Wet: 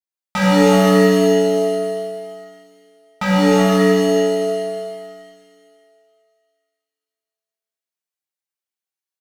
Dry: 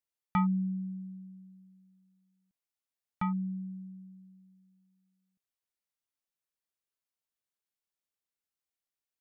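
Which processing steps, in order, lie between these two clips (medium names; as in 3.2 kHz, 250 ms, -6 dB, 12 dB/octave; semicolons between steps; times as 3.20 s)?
high-pass 270 Hz 6 dB/octave; comb 5.4 ms, depth 78%; waveshaping leveller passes 5; feedback echo behind a high-pass 194 ms, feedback 66%, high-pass 1.8 kHz, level -14 dB; pitch-shifted reverb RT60 1.9 s, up +7 st, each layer -2 dB, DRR -7.5 dB; trim -1 dB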